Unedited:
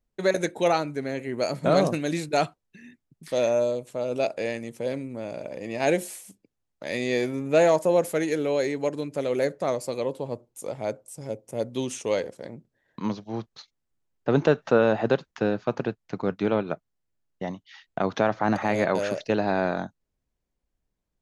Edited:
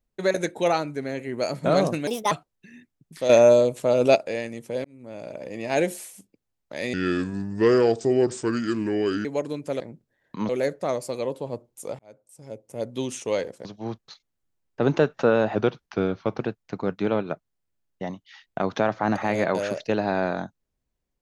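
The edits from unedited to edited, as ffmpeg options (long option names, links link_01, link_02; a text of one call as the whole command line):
ffmpeg -i in.wav -filter_complex "[0:a]asplit=14[link_01][link_02][link_03][link_04][link_05][link_06][link_07][link_08][link_09][link_10][link_11][link_12][link_13][link_14];[link_01]atrim=end=2.074[link_15];[link_02]atrim=start=2.07:end=2.42,asetpts=PTS-STARTPTS,asetrate=63063,aresample=44100[link_16];[link_03]atrim=start=2.416:end=3.402[link_17];[link_04]atrim=start=3.398:end=4.262,asetpts=PTS-STARTPTS,volume=8.5dB[link_18];[link_05]atrim=start=4.258:end=4.95,asetpts=PTS-STARTPTS,afade=type=out:start_time=0.688:duration=0.004:curve=hsin[link_19];[link_06]atrim=start=4.95:end=7.044,asetpts=PTS-STARTPTS,afade=type=in:duration=0.69:curve=qsin[link_20];[link_07]atrim=start=7.04:end=8.73,asetpts=PTS-STARTPTS,asetrate=32193,aresample=44100[link_21];[link_08]atrim=start=8.726:end=9.282[link_22];[link_09]atrim=start=12.438:end=13.132[link_23];[link_10]atrim=start=9.278:end=10.78,asetpts=PTS-STARTPTS,afade=type=out:start_time=1.498:duration=0.004:curve=hsin[link_24];[link_11]atrim=start=10.78:end=12.442,asetpts=PTS-STARTPTS,afade=type=in:duration=1[link_25];[link_12]atrim=start=13.128:end=15.034[link_26];[link_13]atrim=start=15.03:end=15.81,asetpts=PTS-STARTPTS,asetrate=40131,aresample=44100[link_27];[link_14]atrim=start=15.806[link_28];[link_15][link_16]acrossfade=duration=0.004:curve1=hsin:curve2=hsin[link_29];[link_29][link_17]acrossfade=duration=0.004:curve1=hsin:curve2=hsin[link_30];[link_30][link_18]acrossfade=duration=0.004:curve1=hsin:curve2=hsin[link_31];[link_19][link_20]concat=n=2:v=0:a=1[link_32];[link_31][link_32]acrossfade=duration=0.004:curve1=hsin:curve2=hsin[link_33];[link_33][link_21]acrossfade=duration=0.004:curve1=hsin:curve2=hsin[link_34];[link_34][link_22]acrossfade=duration=0.004:curve1=hsin:curve2=hsin[link_35];[link_35][link_23]acrossfade=duration=0.004:curve1=hsin:curve2=hsin[link_36];[link_24][link_25]concat=n=2:v=0:a=1[link_37];[link_36][link_37]acrossfade=duration=0.004:curve1=hsin:curve2=hsin[link_38];[link_38][link_26]acrossfade=duration=0.004:curve1=hsin:curve2=hsin[link_39];[link_39][link_27]acrossfade=duration=0.004:curve1=hsin:curve2=hsin[link_40];[link_40][link_28]acrossfade=duration=0.004:curve1=hsin:curve2=hsin" out.wav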